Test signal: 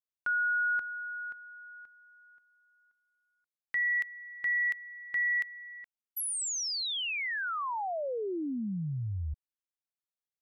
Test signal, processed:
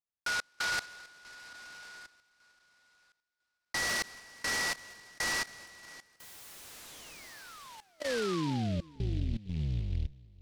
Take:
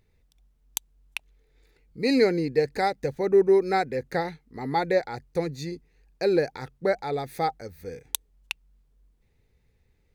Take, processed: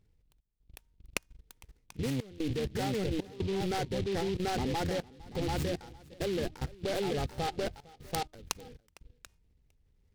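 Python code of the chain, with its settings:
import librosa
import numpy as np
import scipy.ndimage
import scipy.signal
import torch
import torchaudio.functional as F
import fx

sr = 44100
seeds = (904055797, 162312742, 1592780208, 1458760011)

p1 = fx.octave_divider(x, sr, octaves=1, level_db=-1.0)
p2 = fx.low_shelf(p1, sr, hz=220.0, db=6.5)
p3 = p2 + 10.0 ** (-5.0 / 20.0) * np.pad(p2, (int(737 * sr / 1000.0), 0))[:len(p2)]
p4 = 10.0 ** (-10.5 / 20.0) * np.tanh(p3 / 10.0 ** (-10.5 / 20.0))
p5 = scipy.signal.savgol_filter(p4, 9, 4, mode='constant')
p6 = fx.comb_fb(p5, sr, f0_hz=310.0, decay_s=0.76, harmonics='all', damping=0.2, mix_pct=40)
p7 = fx.step_gate(p6, sr, bpm=75, pattern='xx.xxxxxxxx.xx', floor_db=-24.0, edge_ms=4.5)
p8 = fx.level_steps(p7, sr, step_db=18)
p9 = p8 + fx.echo_single(p8, sr, ms=456, db=-22.5, dry=0)
p10 = fx.noise_mod_delay(p9, sr, seeds[0], noise_hz=3000.0, depth_ms=0.075)
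y = p10 * 10.0 ** (4.5 / 20.0)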